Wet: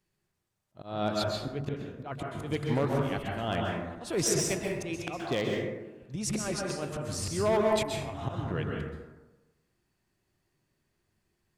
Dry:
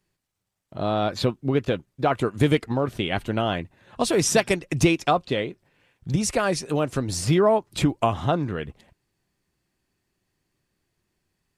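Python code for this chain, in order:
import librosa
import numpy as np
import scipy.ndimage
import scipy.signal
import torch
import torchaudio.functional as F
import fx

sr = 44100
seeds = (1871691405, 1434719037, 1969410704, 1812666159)

y = fx.auto_swell(x, sr, attack_ms=292.0)
y = 10.0 ** (-15.5 / 20.0) * (np.abs((y / 10.0 ** (-15.5 / 20.0) + 3.0) % 4.0 - 2.0) - 1.0)
y = fx.rev_plate(y, sr, seeds[0], rt60_s=1.1, hf_ratio=0.4, predelay_ms=115, drr_db=-1.0)
y = F.gain(torch.from_numpy(y), -4.5).numpy()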